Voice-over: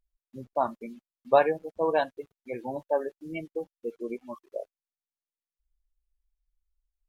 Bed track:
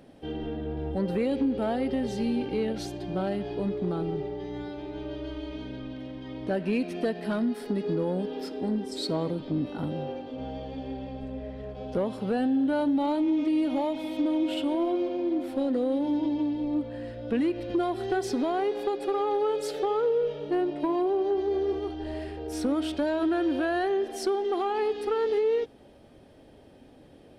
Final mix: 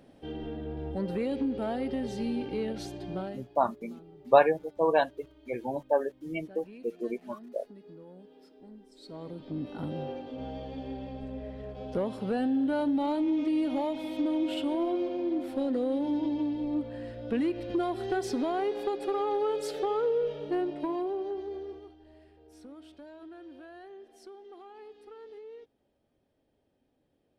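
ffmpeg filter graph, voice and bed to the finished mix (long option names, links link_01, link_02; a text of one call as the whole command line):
ffmpeg -i stem1.wav -i stem2.wav -filter_complex "[0:a]adelay=3000,volume=1dB[link_01];[1:a]volume=15dB,afade=type=out:start_time=3.13:duration=0.32:silence=0.133352,afade=type=in:start_time=9:duration=1.02:silence=0.112202,afade=type=out:start_time=20.44:duration=1.56:silence=0.112202[link_02];[link_01][link_02]amix=inputs=2:normalize=0" out.wav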